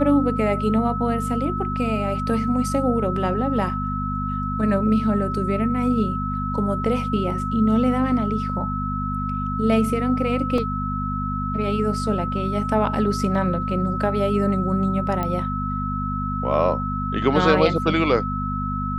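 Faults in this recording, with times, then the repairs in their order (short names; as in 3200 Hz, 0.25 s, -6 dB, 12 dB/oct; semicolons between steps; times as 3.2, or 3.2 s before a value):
hum 50 Hz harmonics 5 -27 dBFS
tone 1300 Hz -27 dBFS
10.58 gap 2.1 ms
15.23 pop -13 dBFS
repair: de-click; de-hum 50 Hz, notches 5; notch 1300 Hz, Q 30; interpolate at 10.58, 2.1 ms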